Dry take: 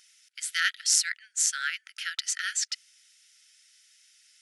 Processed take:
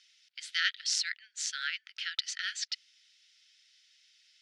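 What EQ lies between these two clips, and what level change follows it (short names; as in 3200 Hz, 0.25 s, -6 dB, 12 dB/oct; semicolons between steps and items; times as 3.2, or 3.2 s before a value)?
HPF 1400 Hz; synth low-pass 4100 Hz, resonance Q 1.8; -4.5 dB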